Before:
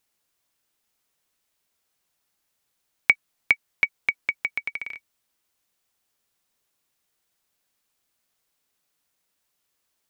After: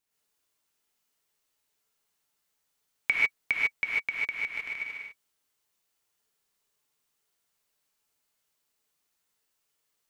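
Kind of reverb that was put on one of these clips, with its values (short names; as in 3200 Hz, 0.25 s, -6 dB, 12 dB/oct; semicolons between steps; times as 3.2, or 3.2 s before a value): non-linear reverb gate 0.17 s rising, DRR -6 dB; gain -9.5 dB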